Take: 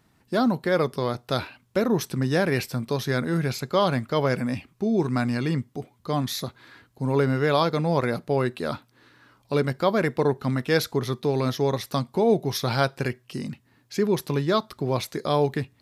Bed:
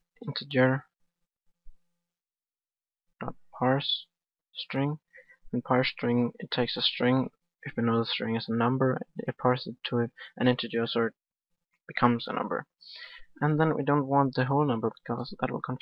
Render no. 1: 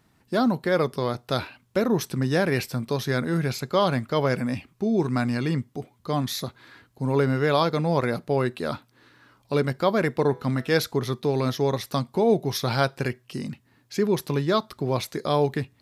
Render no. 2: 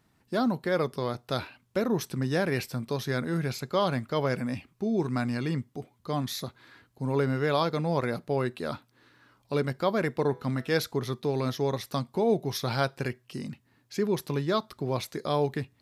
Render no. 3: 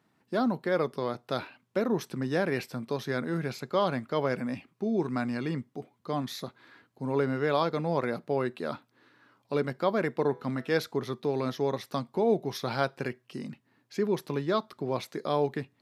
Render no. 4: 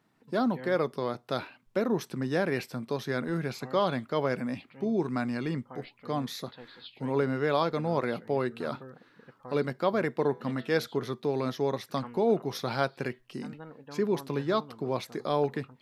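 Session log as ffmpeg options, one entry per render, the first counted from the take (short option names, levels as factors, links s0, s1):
-filter_complex "[0:a]asplit=3[s0][s1][s2];[s0]afade=t=out:st=10.29:d=0.02[s3];[s1]bandreject=f=164.5:t=h:w=4,bandreject=f=329:t=h:w=4,bandreject=f=493.5:t=h:w=4,bandreject=f=658:t=h:w=4,bandreject=f=822.5:t=h:w=4,bandreject=f=987:t=h:w=4,bandreject=f=1151.5:t=h:w=4,bandreject=f=1316:t=h:w=4,bandreject=f=1480.5:t=h:w=4,bandreject=f=1645:t=h:w=4,bandreject=f=1809.5:t=h:w=4,bandreject=f=1974:t=h:w=4,bandreject=f=2138.5:t=h:w=4,bandreject=f=2303:t=h:w=4,bandreject=f=2467.5:t=h:w=4,bandreject=f=2632:t=h:w=4,bandreject=f=2796.5:t=h:w=4,bandreject=f=2961:t=h:w=4,bandreject=f=3125.5:t=h:w=4,bandreject=f=3290:t=h:w=4,bandreject=f=3454.5:t=h:w=4,bandreject=f=3619:t=h:w=4,bandreject=f=3783.5:t=h:w=4,bandreject=f=3948:t=h:w=4,bandreject=f=4112.5:t=h:w=4,bandreject=f=4277:t=h:w=4,bandreject=f=4441.5:t=h:w=4,bandreject=f=4606:t=h:w=4,bandreject=f=4770.5:t=h:w=4,bandreject=f=4935:t=h:w=4,bandreject=f=5099.5:t=h:w=4,bandreject=f=5264:t=h:w=4,bandreject=f=5428.5:t=h:w=4,bandreject=f=5593:t=h:w=4,bandreject=f=5757.5:t=h:w=4,bandreject=f=5922:t=h:w=4,bandreject=f=6086.5:t=h:w=4,afade=t=in:st=10.29:d=0.02,afade=t=out:st=10.72:d=0.02[s4];[s2]afade=t=in:st=10.72:d=0.02[s5];[s3][s4][s5]amix=inputs=3:normalize=0"
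-af "volume=0.596"
-af "highpass=170,highshelf=f=4300:g=-8.5"
-filter_complex "[1:a]volume=0.0891[s0];[0:a][s0]amix=inputs=2:normalize=0"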